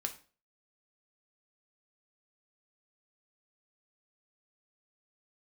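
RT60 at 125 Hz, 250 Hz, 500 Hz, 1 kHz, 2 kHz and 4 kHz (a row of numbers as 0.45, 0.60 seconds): 0.40, 0.40, 0.40, 0.35, 0.35, 0.35 seconds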